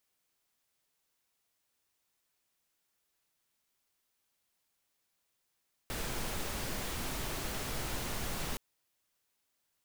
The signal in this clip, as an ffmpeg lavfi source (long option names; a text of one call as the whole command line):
ffmpeg -f lavfi -i "anoisesrc=color=pink:amplitude=0.0724:duration=2.67:sample_rate=44100:seed=1" out.wav